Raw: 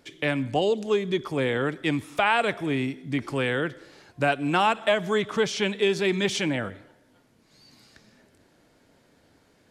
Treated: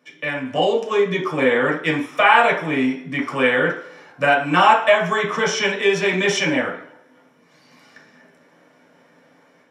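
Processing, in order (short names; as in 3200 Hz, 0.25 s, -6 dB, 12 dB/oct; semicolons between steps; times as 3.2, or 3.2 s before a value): dynamic EQ 6800 Hz, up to +6 dB, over -50 dBFS, Q 1.2; AGC gain up to 7.5 dB; reverb RT60 0.50 s, pre-delay 3 ms, DRR -3.5 dB; gain -9.5 dB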